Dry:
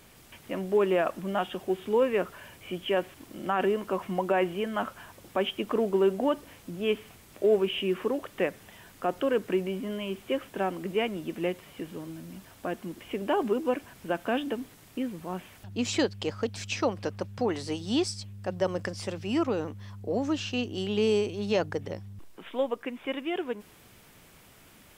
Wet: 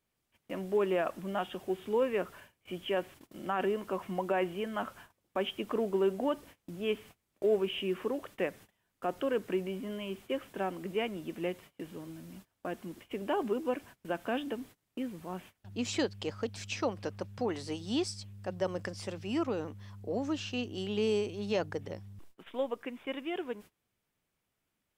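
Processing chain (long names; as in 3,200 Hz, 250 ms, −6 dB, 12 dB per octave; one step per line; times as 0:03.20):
noise gate −45 dBFS, range −23 dB
level −5 dB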